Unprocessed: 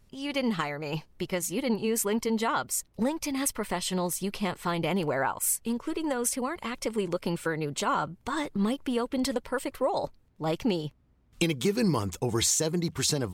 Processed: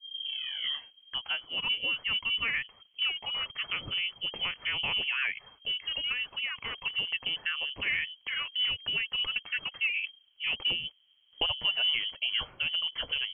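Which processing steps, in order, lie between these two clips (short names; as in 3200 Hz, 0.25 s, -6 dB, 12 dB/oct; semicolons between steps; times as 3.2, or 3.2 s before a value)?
tape start at the beginning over 1.60 s; inverted band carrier 3200 Hz; gain -3 dB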